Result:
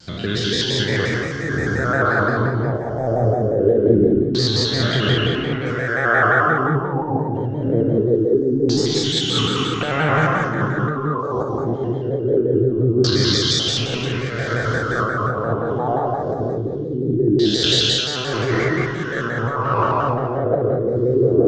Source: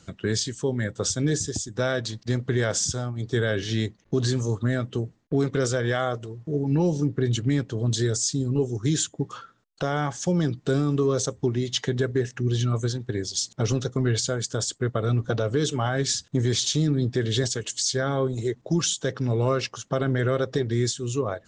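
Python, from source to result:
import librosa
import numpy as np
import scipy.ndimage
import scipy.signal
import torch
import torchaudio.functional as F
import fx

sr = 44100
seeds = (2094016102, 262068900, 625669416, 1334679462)

y = fx.spec_trails(x, sr, decay_s=2.55)
y = fx.peak_eq(y, sr, hz=82.0, db=-11.5, octaves=1.2, at=(8.05, 9.24))
y = fx.over_compress(y, sr, threshold_db=-24.0, ratio=-0.5)
y = fx.filter_lfo_lowpass(y, sr, shape='saw_down', hz=0.23, low_hz=310.0, high_hz=4600.0, q=4.3)
y = y + 10.0 ** (-12.0 / 20.0) * np.pad(y, (int(274 * sr / 1000.0), 0))[:len(y)]
y = fx.rev_gated(y, sr, seeds[0], gate_ms=240, shape='rising', drr_db=0.0)
y = fx.vibrato_shape(y, sr, shape='square', rate_hz=5.7, depth_cents=100.0)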